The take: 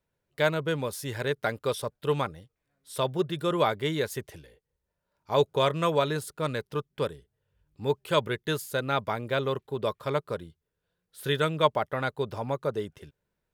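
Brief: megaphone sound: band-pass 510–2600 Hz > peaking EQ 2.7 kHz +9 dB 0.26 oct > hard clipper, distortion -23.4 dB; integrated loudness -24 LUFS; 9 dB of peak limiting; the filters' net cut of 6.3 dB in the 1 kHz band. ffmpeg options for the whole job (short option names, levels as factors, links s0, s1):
-af "equalizer=f=1000:t=o:g=-7.5,alimiter=limit=0.0944:level=0:latency=1,highpass=510,lowpass=2600,equalizer=f=2700:t=o:w=0.26:g=9,asoftclip=type=hard:threshold=0.0596,volume=4.73"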